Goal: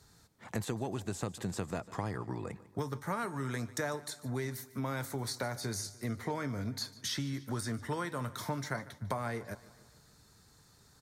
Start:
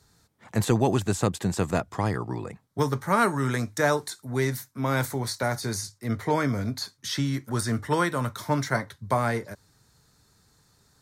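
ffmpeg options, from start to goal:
ffmpeg -i in.wav -filter_complex "[0:a]acompressor=threshold=-34dB:ratio=5,asplit=2[link_01][link_02];[link_02]aecho=0:1:148|296|444|592|740:0.112|0.0628|0.0352|0.0197|0.011[link_03];[link_01][link_03]amix=inputs=2:normalize=0" out.wav

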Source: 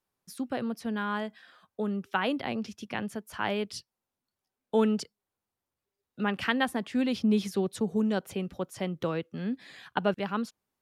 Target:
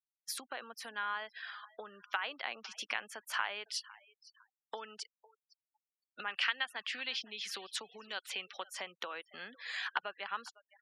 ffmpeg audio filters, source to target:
ffmpeg -i in.wav -filter_complex "[0:a]asettb=1/sr,asplit=3[link_01][link_02][link_03];[link_01]atrim=end=6.304[link_04];[link_02]atrim=start=6.3:end=8.66,asetpts=PTS-STARTPTS,afade=type=in:duration=0.004:curve=qsin,afade=type=out:start_time=2.356:duration=0.004:curve=qsin,equalizer=frequency=3500:width=0.61:gain=8.5[link_05];[link_03]atrim=start=8.656[link_06];[link_04][link_05]acrossfade=duration=0.004:curve1=hsin:curve2=qsin[link_07];[link_07][link_06]acrossfade=duration=0.004:curve1=qsin:curve2=hsin,acompressor=threshold=-40dB:ratio=16,highpass=1200,bandreject=frequency=3700:width=28,aecho=1:1:506|1012|1518:0.1|0.039|0.0152,afftfilt=real='re*gte(hypot(re,im),0.000708)':imag='im*gte(hypot(re,im),0.000708)':win_size=1024:overlap=0.75,highshelf=frequency=5900:gain=-9,volume=13dB" out.wav

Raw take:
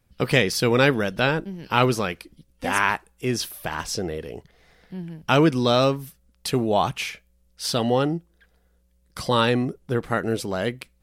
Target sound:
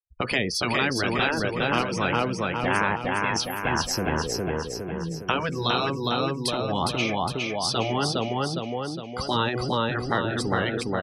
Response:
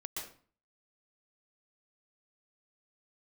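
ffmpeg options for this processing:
-filter_complex "[0:a]acrossover=split=310|790[link_01][link_02][link_03];[link_01]acompressor=threshold=-30dB:ratio=4[link_04];[link_02]acompressor=threshold=-29dB:ratio=4[link_05];[link_03]acompressor=threshold=-27dB:ratio=4[link_06];[link_04][link_05][link_06]amix=inputs=3:normalize=0,afftfilt=real='re*gte(hypot(re,im),0.00562)':imag='im*gte(hypot(re,im),0.00562)':win_size=1024:overlap=0.75,afftdn=noise_reduction=33:noise_floor=-36,asplit=2[link_07][link_08];[link_08]aecho=0:1:410|820|1230|1640|2050|2460|2870:0.708|0.368|0.191|0.0995|0.0518|0.0269|0.014[link_09];[link_07][link_09]amix=inputs=2:normalize=0,afftfilt=real='re*lt(hypot(re,im),0.282)':imag='im*lt(hypot(re,im),0.282)':win_size=1024:overlap=0.75,volume=4dB"

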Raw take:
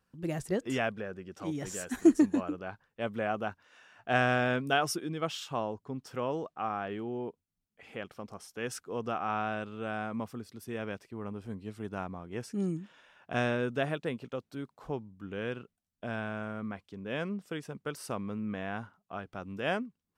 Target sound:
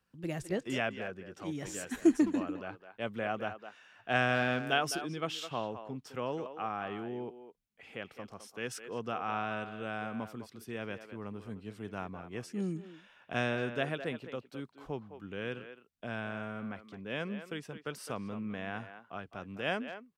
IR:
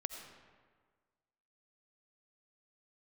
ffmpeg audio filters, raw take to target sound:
-filter_complex "[0:a]asplit=2[link_01][link_02];[link_02]adelay=210,highpass=300,lowpass=3400,asoftclip=type=hard:threshold=-19dB,volume=-10dB[link_03];[link_01][link_03]amix=inputs=2:normalize=0,acrossover=split=100|1300|3300[link_04][link_05][link_06][link_07];[link_06]crystalizer=i=4:c=0[link_08];[link_04][link_05][link_08][link_07]amix=inputs=4:normalize=0,volume=-3dB"

